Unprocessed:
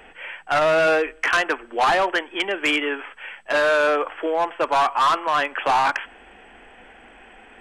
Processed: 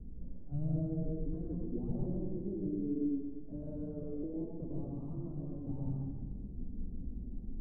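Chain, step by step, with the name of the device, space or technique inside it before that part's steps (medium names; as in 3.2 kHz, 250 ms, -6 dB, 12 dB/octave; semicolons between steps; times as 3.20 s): club heard from the street (peak limiter -22 dBFS, peak gain reduction 8 dB; low-pass 190 Hz 24 dB/octave; reverberation RT60 1.3 s, pre-delay 99 ms, DRR -3 dB); trim +12.5 dB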